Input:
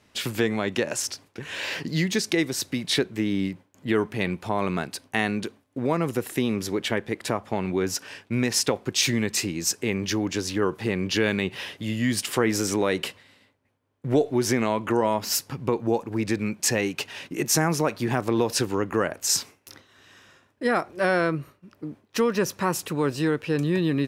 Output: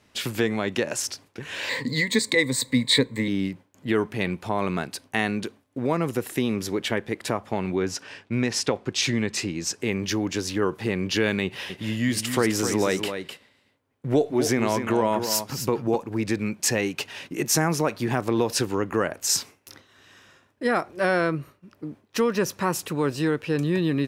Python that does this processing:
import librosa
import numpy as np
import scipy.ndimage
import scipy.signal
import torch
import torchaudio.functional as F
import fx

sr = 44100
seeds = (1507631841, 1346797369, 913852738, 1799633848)

y = fx.ripple_eq(x, sr, per_octave=1.0, db=16, at=(1.69, 3.28))
y = fx.air_absorb(y, sr, metres=52.0, at=(7.75, 9.8))
y = fx.echo_single(y, sr, ms=256, db=-8.0, at=(11.44, 15.96))